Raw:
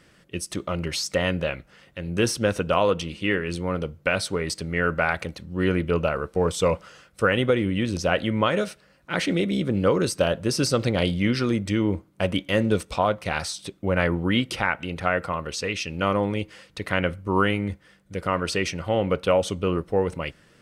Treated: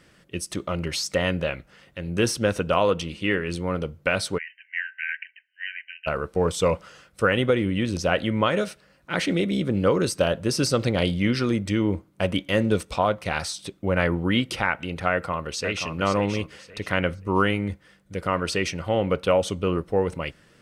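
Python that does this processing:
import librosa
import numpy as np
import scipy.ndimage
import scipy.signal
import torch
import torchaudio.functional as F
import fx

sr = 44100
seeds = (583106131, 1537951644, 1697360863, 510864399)

y = fx.brickwall_bandpass(x, sr, low_hz=1500.0, high_hz=3100.0, at=(4.37, 6.06), fade=0.02)
y = fx.echo_throw(y, sr, start_s=15.11, length_s=0.82, ms=530, feedback_pct=25, wet_db=-7.5)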